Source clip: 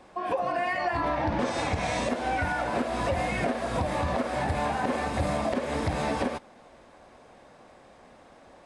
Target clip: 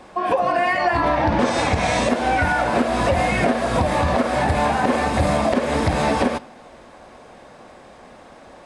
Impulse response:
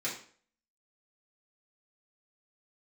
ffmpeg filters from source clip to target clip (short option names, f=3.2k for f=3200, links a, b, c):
-filter_complex "[0:a]asplit=2[a][b];[1:a]atrim=start_sample=2205,asetrate=30870,aresample=44100[c];[b][c]afir=irnorm=-1:irlink=0,volume=-23dB[d];[a][d]amix=inputs=2:normalize=0,volume=8.5dB"